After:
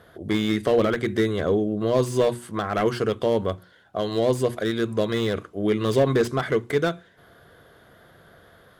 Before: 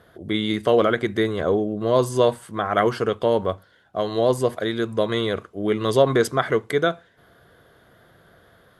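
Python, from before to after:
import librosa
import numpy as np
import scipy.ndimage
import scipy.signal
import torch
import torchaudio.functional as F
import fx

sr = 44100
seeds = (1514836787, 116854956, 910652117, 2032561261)

y = fx.dynamic_eq(x, sr, hz=850.0, q=0.76, threshold_db=-31.0, ratio=4.0, max_db=-7)
y = fx.hum_notches(y, sr, base_hz=60, count=6)
y = fx.slew_limit(y, sr, full_power_hz=93.0)
y = F.gain(torch.from_numpy(y), 2.0).numpy()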